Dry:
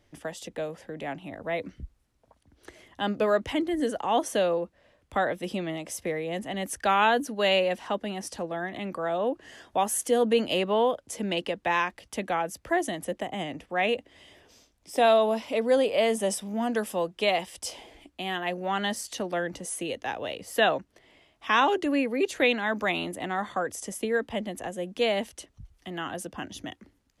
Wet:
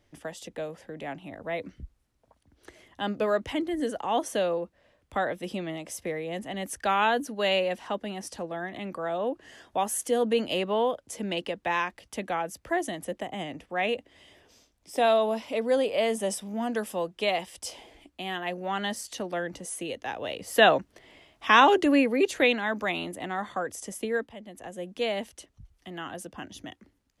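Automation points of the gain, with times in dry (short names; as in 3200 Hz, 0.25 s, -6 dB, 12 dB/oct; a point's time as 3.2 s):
20.1 s -2 dB
20.67 s +4.5 dB
21.92 s +4.5 dB
22.82 s -2 dB
24.2 s -2 dB
24.35 s -13.5 dB
24.78 s -3.5 dB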